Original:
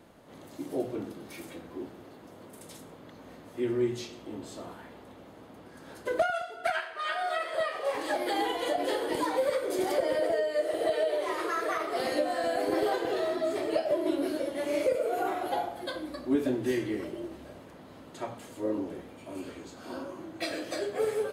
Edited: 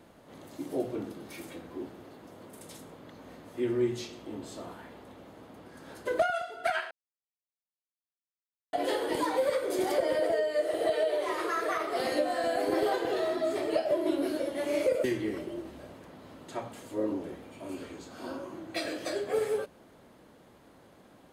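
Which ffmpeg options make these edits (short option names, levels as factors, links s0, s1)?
-filter_complex "[0:a]asplit=4[s0][s1][s2][s3];[s0]atrim=end=6.91,asetpts=PTS-STARTPTS,afade=t=out:st=6.906:d=0.004:c=hsin[s4];[s1]atrim=start=6.91:end=8.73,asetpts=PTS-STARTPTS,volume=0[s5];[s2]atrim=start=8.73:end=15.042,asetpts=PTS-STARTPTS,afade=t=in:d=0.004:c=hsin[s6];[s3]atrim=start=16.698[s7];[s4][s5][s6]concat=n=3:v=0:a=1[s8];[s8][s7]acrossfade=d=0.004:c1=hsin:c2=hsin"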